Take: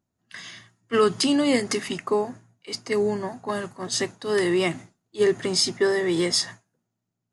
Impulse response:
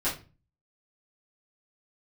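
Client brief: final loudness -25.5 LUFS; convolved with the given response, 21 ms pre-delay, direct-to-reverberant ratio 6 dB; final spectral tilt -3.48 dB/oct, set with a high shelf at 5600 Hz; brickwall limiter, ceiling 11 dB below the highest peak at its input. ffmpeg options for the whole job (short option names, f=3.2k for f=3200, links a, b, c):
-filter_complex "[0:a]highshelf=f=5.6k:g=6.5,alimiter=limit=-16.5dB:level=0:latency=1,asplit=2[a][b];[1:a]atrim=start_sample=2205,adelay=21[c];[b][c]afir=irnorm=-1:irlink=0,volume=-14.5dB[d];[a][d]amix=inputs=2:normalize=0,volume=0.5dB"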